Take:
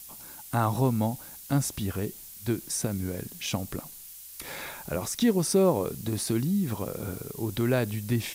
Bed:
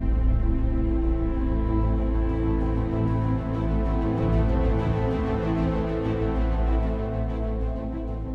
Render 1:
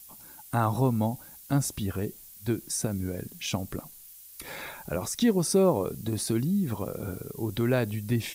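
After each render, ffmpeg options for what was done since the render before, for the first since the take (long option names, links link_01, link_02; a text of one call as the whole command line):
ffmpeg -i in.wav -af "afftdn=noise_reduction=6:noise_floor=-46" out.wav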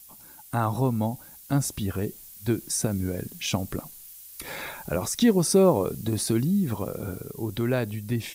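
ffmpeg -i in.wav -af "dynaudnorm=framelen=330:gausssize=11:maxgain=3.5dB" out.wav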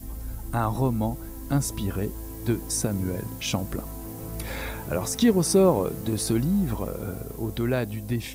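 ffmpeg -i in.wav -i bed.wav -filter_complex "[1:a]volume=-13.5dB[link_01];[0:a][link_01]amix=inputs=2:normalize=0" out.wav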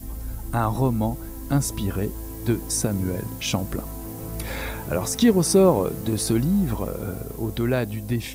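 ffmpeg -i in.wav -af "volume=2.5dB" out.wav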